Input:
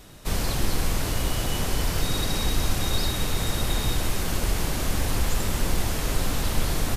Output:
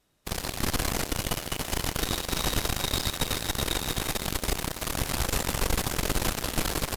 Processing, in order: on a send: feedback echo 0.372 s, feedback 57%, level -8 dB; on the sum: added harmonics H 3 -30 dB, 7 -17 dB, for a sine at -8.5 dBFS; low shelf 180 Hz -6 dB

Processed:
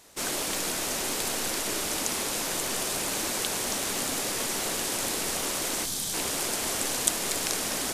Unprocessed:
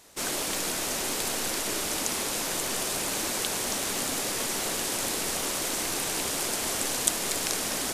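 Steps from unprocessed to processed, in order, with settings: spectral gain 5.84–6.14, 260–3000 Hz -9 dB

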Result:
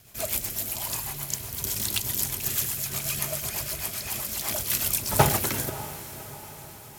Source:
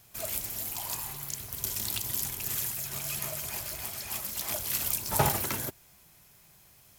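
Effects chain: rotary speaker horn 8 Hz; diffused feedback echo 0.577 s, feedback 55%, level -14 dB; gain +7.5 dB

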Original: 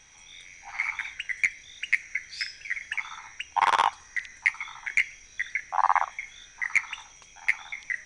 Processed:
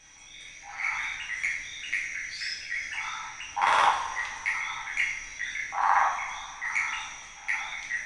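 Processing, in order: transient shaper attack -7 dB, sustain +4 dB; two-slope reverb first 0.53 s, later 2.9 s, from -16 dB, DRR -4 dB; gain -2.5 dB

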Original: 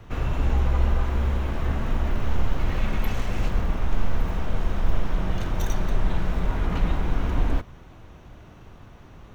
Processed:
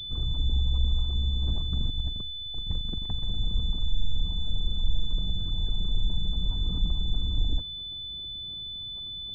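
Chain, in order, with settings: formant sharpening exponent 2; 1.42–3.26 negative-ratio compressor -25 dBFS, ratio -0.5; pulse-width modulation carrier 3500 Hz; gain -3.5 dB

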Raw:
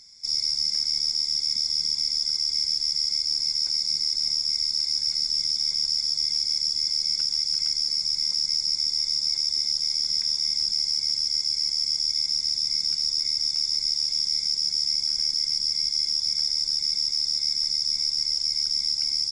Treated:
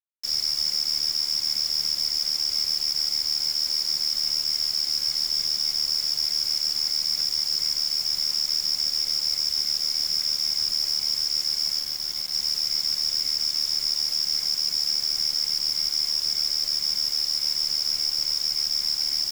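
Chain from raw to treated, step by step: 11.79–12.34 high shelf 3400 Hz -6.5 dB; bit-crush 6-bit

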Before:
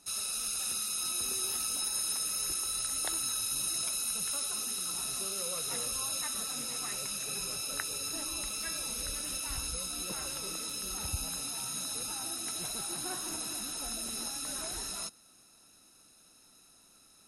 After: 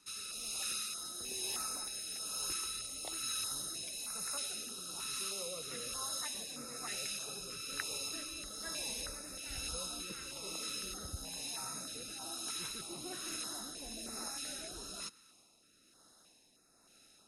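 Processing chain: overdrive pedal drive 9 dB, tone 2800 Hz, clips at -16 dBFS; rotary speaker horn 1.1 Hz; stepped notch 3.2 Hz 690–3100 Hz

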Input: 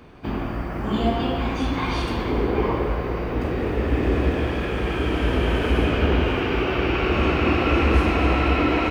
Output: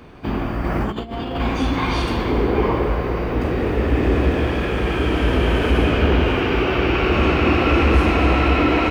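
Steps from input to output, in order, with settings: soft clip -8.5 dBFS, distortion -26 dB; 0.64–1.4 negative-ratio compressor -27 dBFS, ratio -0.5; gain +4 dB

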